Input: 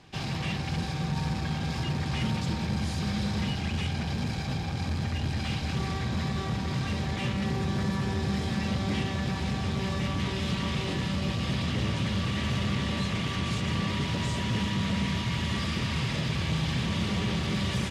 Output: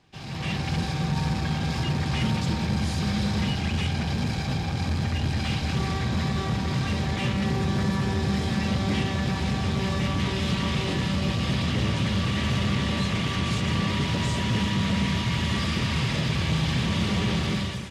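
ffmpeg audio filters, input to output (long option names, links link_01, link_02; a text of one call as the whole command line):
ffmpeg -i in.wav -af "dynaudnorm=framelen=110:gausssize=7:maxgain=11.5dB,volume=-7.5dB" out.wav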